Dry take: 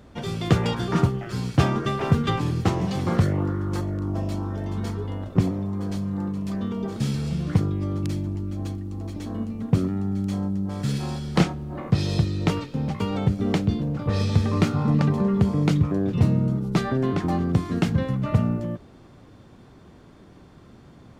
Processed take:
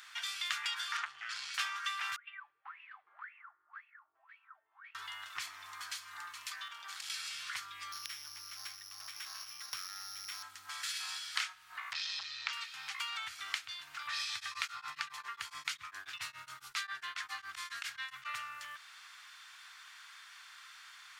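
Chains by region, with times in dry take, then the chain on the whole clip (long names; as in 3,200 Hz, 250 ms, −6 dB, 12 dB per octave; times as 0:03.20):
0:00.97–0:01.54: low-pass filter 6,200 Hz + saturating transformer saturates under 890 Hz
0:02.16–0:04.95: LFO wah 1.9 Hz 450–2,700 Hz, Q 20 + high-frequency loss of the air 490 metres
0:06.68–0:07.10: downward compressor 4 to 1, threshold −29 dBFS + saturating transformer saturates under 370 Hz
0:07.92–0:10.43: samples sorted by size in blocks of 8 samples + high-pass filter 41 Hz + high-shelf EQ 4,500 Hz −9.5 dB
0:11.93–0:12.53: low-pass filter 6,000 Hz 24 dB per octave + saturating transformer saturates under 510 Hz
0:14.34–0:18.35: low-shelf EQ 150 Hz +5.5 dB + tremolo along a rectified sine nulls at 7.3 Hz
whole clip: inverse Chebyshev high-pass filter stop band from 550 Hz, stop band 50 dB; downward compressor 2 to 1, threshold −54 dBFS; level +10 dB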